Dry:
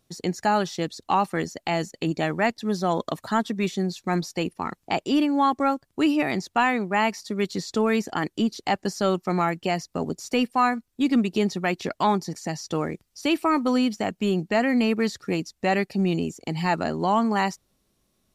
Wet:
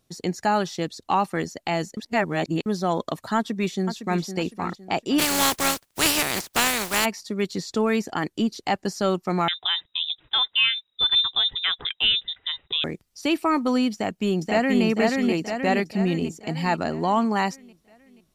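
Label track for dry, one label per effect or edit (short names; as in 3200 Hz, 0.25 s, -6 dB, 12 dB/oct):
1.970000	2.660000	reverse
3.360000	4.240000	echo throw 0.51 s, feedback 30%, level -9.5 dB
5.180000	7.040000	spectral contrast lowered exponent 0.29
9.480000	12.840000	inverted band carrier 3800 Hz
13.930000	14.840000	echo throw 0.48 s, feedback 55%, level -2 dB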